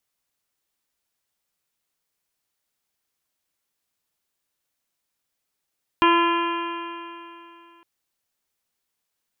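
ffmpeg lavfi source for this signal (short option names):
-f lavfi -i "aevalsrc='0.126*pow(10,-3*t/2.82)*sin(2*PI*338.17*t)+0.0211*pow(10,-3*t/2.82)*sin(2*PI*677.35*t)+0.178*pow(10,-3*t/2.82)*sin(2*PI*1018.55*t)+0.0501*pow(10,-3*t/2.82)*sin(2*PI*1362.77*t)+0.0501*pow(10,-3*t/2.82)*sin(2*PI*1710.99*t)+0.0168*pow(10,-3*t/2.82)*sin(2*PI*2064.18*t)+0.0501*pow(10,-3*t/2.82)*sin(2*PI*2423.27*t)+0.0501*pow(10,-3*t/2.82)*sin(2*PI*2789.19*t)+0.0355*pow(10,-3*t/2.82)*sin(2*PI*3162.8*t)':d=1.81:s=44100"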